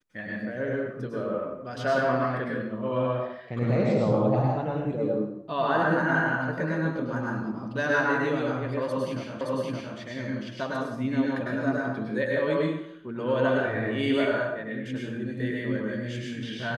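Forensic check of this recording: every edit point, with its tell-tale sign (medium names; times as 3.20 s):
9.41 s: repeat of the last 0.57 s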